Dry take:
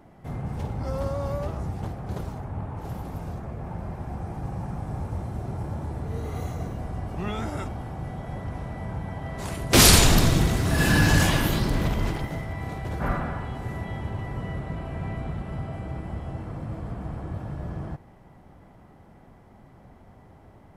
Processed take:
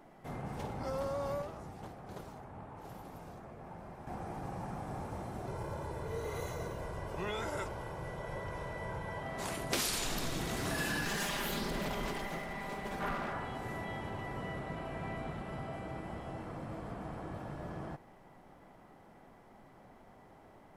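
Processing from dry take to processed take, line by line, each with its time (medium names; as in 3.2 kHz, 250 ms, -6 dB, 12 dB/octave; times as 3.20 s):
1.42–4.07 s: gain -6 dB
5.47–9.23 s: comb 2 ms, depth 61%
11.05–13.33 s: comb filter that takes the minimum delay 5 ms
whole clip: peaking EQ 69 Hz -14.5 dB 2.6 oct; compression 8:1, threshold -30 dBFS; trim -2 dB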